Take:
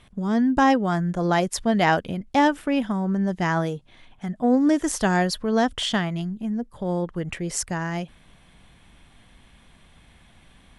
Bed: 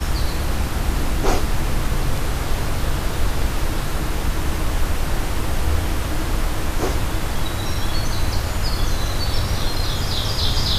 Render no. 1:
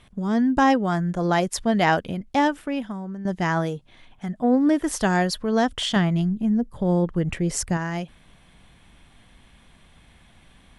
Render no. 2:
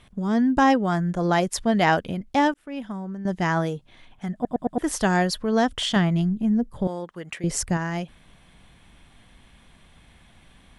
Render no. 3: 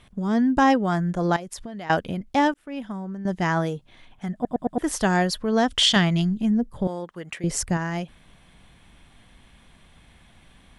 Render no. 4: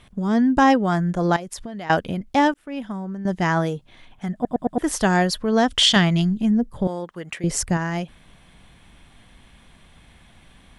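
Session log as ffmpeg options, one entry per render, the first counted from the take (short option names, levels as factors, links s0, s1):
-filter_complex "[0:a]asettb=1/sr,asplit=3[s0][s1][s2];[s0]atrim=end=4.434[s3];[s1]atrim=start=4.43:end=4.92,asetpts=PTS-STARTPTS,afade=t=in:d=0.004:c=qsin,afade=t=out:st=0.486:d=0.004:c=qsin,equalizer=f=6700:t=o:w=0.68:g=-11.5[s4];[s2]atrim=start=4.916[s5];[s3][s4]acrossfade=d=0.004:c1=hsin:c2=qsin[s6];[s6][s5]acrossfade=d=0.004:c1=qsin:c2=hsin,asettb=1/sr,asplit=3[s7][s8][s9];[s7]atrim=end=5.964[s10];[s8]atrim=start=5.96:end=7.77,asetpts=PTS-STARTPTS,afade=t=in:d=0.004:c=qsin,afade=t=out:st=1.806:d=0.004:c=qsin,lowshelf=f=400:g=7.5[s11];[s9]atrim=start=7.766[s12];[s10][s11]acrossfade=d=0.004:c1=hsin:c2=qsin[s13];[s13][s12]acrossfade=d=0.004:c1=qsin:c2=hsin,asplit=2[s14][s15];[s14]atrim=end=3.25,asetpts=PTS-STARTPTS,afade=t=out:st=2.17:d=1.08:silence=0.251189[s16];[s15]atrim=start=3.25,asetpts=PTS-STARTPTS,afade=t=in:d=0.004:c=hsin:silence=0.251189[s17];[s16][s17]concat=n=2:v=0:a=1"
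-filter_complex "[0:a]asettb=1/sr,asplit=3[s0][s1][s2];[s0]atrim=end=6.874[s3];[s1]atrim=start=6.87:end=7.44,asetpts=PTS-STARTPTS,afade=t=in:d=0.004:c=qsin,afade=t=out:st=0.566:d=0.004:c=qsin,highpass=f=1200:p=1[s4];[s2]atrim=start=7.436[s5];[s3][s4]acrossfade=d=0.004:c1=hsin:c2=qsin[s6];[s6][s5]acrossfade=d=0.004:c1=qsin:c2=hsin,asplit=6[s7][s8][s9][s10][s11][s12];[s7]atrim=end=2.54,asetpts=PTS-STARTPTS,afade=t=out:st=2.536:d=0.004:c=hsin[s13];[s8]atrim=start=2.54:end=4.452,asetpts=PTS-STARTPTS,afade=t=in:d=0.41[s14];[s9]atrim=start=4.338:end=4.452[s15];[s10]atrim=start=4.338:end=4.452[s16];[s11]atrim=start=4.338:end=4.452[s17];[s12]atrim=start=4.778[s18];[s13][s14]concat=n=2:v=0:a=1[s19];[s19][s15]acrossfade=d=0.004:c1=hsin:c2=hsin[s20];[s20][s16]acrossfade=d=0.004:c1=hsin:c2=hsin[s21];[s21][s17]acrossfade=d=0.004:c1=hsin:c2=hsin[s22];[s22][s18]acrossfade=d=0.004:c1=hsin:c2=hsin"
-filter_complex "[0:a]asettb=1/sr,asplit=3[s0][s1][s2];[s0]atrim=end=1.364[s3];[s1]atrim=start=1.36:end=1.9,asetpts=PTS-STARTPTS,afade=t=in:d=0.004:c=qsin,afade=t=out:st=0.536:d=0.004:c=qsin,acompressor=threshold=0.0251:ratio=10:attack=3.2:release=140:knee=1:detection=peak[s4];[s2]atrim=start=1.896[s5];[s3][s4]acrossfade=d=0.004:c1=hsin:c2=qsin[s6];[s6][s5]acrossfade=d=0.004:c1=qsin:c2=hsin,asettb=1/sr,asplit=3[s7][s8][s9];[s7]atrim=end=5.704[s10];[s8]atrim=start=5.7:end=6.51,asetpts=PTS-STARTPTS,afade=t=in:d=0.004:c=qsin,afade=t=out:st=0.806:d=0.004:c=qsin,equalizer=f=4500:w=0.46:g=9.5[s11];[s9]atrim=start=6.506[s12];[s10][s11]acrossfade=d=0.004:c1=hsin:c2=qsin[s13];[s13][s12]acrossfade=d=0.004:c1=qsin:c2=hsin"
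-af "volume=1.33"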